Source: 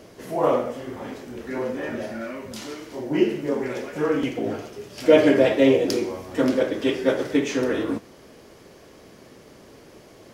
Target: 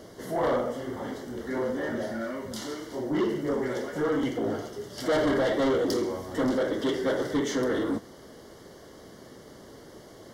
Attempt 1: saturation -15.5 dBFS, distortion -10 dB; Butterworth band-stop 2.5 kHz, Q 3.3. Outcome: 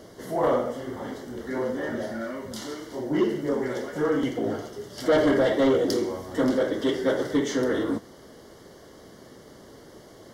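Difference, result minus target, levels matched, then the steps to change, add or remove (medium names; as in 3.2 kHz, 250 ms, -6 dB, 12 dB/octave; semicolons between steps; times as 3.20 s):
saturation: distortion -4 dB
change: saturation -21.5 dBFS, distortion -6 dB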